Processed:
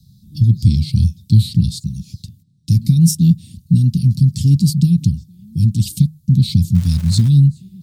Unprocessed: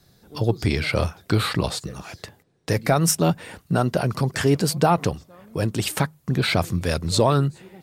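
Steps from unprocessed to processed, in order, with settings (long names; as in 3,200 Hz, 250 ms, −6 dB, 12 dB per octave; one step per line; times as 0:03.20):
elliptic band-stop filter 210–3,900 Hz, stop band 50 dB
parametric band 110 Hz +12.5 dB 2.8 octaves
0:06.74–0:07.28: surface crackle 470 per second −28 dBFS
level +1 dB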